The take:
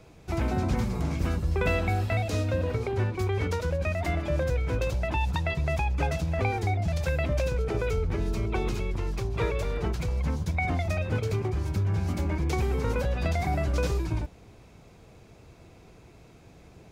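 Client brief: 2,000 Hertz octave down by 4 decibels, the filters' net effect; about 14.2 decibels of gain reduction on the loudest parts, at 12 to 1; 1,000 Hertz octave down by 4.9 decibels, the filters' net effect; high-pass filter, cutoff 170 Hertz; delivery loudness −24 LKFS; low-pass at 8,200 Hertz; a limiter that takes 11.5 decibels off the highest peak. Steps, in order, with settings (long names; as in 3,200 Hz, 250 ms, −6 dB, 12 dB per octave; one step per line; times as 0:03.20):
high-pass filter 170 Hz
low-pass filter 8,200 Hz
parametric band 1,000 Hz −6.5 dB
parametric band 2,000 Hz −3.5 dB
downward compressor 12 to 1, threshold −42 dBFS
level +27 dB
brickwall limiter −15 dBFS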